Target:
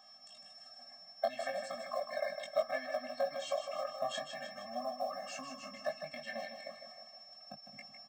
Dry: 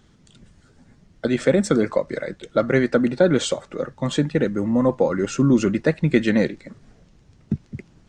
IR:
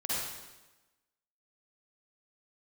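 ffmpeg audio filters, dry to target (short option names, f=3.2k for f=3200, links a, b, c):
-filter_complex "[0:a]equalizer=f=3.5k:t=o:w=0.23:g=-5.5,acrossover=split=4400[a][b];[b]alimiter=level_in=6.5dB:limit=-24dB:level=0:latency=1,volume=-6.5dB[c];[a][c]amix=inputs=2:normalize=0,acompressor=threshold=-27dB:ratio=20,highpass=f=750:t=q:w=4.7,acrusher=bits=8:mode=log:mix=0:aa=0.000001,aeval=exprs='val(0)+0.00178*sin(2*PI*5400*n/s)':c=same,flanger=delay=19:depth=3.1:speed=0.37,asplit=2[d][e];[e]aecho=0:1:155|310|465|620|775|930:0.398|0.199|0.0995|0.0498|0.0249|0.0124[f];[d][f]amix=inputs=2:normalize=0,afftfilt=real='re*eq(mod(floor(b*sr/1024/260),2),0)':imag='im*eq(mod(floor(b*sr/1024/260),2),0)':win_size=1024:overlap=0.75,volume=1.5dB"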